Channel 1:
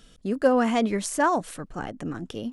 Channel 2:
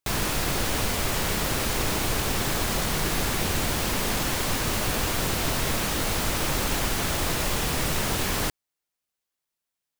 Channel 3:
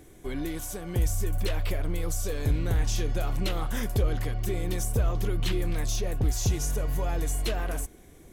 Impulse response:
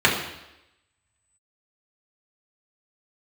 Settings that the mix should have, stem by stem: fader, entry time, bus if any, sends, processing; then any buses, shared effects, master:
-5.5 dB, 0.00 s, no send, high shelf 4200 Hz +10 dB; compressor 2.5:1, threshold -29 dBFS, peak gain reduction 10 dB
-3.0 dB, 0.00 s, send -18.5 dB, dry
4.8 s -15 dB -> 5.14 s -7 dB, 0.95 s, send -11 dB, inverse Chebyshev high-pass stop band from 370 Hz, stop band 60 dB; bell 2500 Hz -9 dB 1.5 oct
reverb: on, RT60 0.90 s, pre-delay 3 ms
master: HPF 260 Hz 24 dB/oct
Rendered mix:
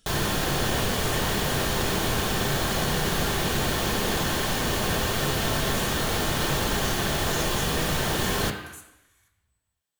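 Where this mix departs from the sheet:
stem 1 -5.5 dB -> -12.0 dB; master: missing HPF 260 Hz 24 dB/oct

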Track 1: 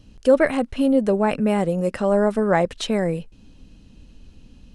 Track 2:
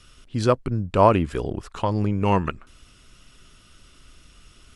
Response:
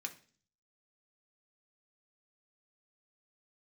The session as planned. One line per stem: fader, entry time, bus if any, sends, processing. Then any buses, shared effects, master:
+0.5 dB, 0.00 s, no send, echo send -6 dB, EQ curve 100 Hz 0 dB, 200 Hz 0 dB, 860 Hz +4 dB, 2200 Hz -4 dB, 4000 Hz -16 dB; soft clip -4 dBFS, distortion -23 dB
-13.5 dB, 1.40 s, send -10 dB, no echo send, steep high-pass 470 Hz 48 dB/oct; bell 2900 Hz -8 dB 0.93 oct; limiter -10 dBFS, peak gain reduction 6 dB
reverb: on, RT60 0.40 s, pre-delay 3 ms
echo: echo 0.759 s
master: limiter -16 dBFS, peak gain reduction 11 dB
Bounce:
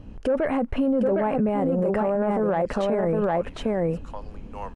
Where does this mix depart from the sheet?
stem 1 +0.5 dB -> +7.0 dB; stem 2: entry 1.40 s -> 2.30 s

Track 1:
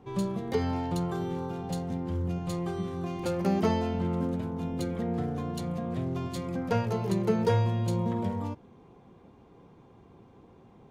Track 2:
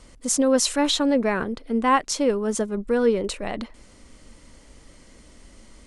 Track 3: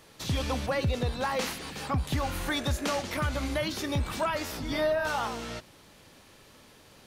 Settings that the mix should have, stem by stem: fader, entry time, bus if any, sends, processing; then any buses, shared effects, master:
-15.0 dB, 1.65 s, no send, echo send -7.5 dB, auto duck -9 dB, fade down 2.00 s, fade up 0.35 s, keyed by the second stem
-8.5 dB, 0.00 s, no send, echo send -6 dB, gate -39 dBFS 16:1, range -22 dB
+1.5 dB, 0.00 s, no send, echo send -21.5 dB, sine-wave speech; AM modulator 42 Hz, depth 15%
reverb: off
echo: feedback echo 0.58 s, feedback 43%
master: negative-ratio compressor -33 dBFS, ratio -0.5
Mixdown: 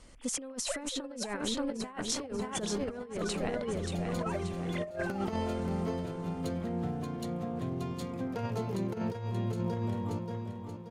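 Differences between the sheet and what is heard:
stem 1 -15.0 dB -> -6.5 dB; stem 2: missing gate -39 dBFS 16:1, range -22 dB; stem 3 +1.5 dB -> -9.5 dB

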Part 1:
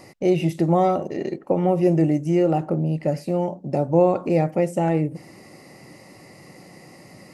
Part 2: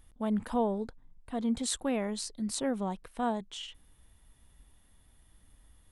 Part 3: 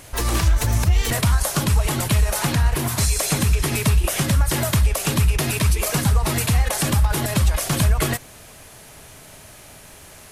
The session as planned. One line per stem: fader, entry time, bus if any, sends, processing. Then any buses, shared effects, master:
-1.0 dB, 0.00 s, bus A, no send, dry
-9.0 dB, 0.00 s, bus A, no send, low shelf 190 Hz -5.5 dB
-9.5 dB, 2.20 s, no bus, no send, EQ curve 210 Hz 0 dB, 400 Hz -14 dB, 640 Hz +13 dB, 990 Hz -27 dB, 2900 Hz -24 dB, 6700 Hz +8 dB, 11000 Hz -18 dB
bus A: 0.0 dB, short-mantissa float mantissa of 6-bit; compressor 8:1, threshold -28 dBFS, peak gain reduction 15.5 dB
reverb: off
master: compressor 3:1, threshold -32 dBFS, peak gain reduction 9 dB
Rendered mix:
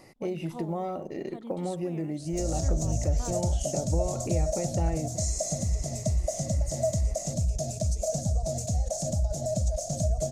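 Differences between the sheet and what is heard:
stem 1 -1.0 dB -> -7.5 dB; master: missing compressor 3:1, threshold -32 dBFS, peak gain reduction 9 dB

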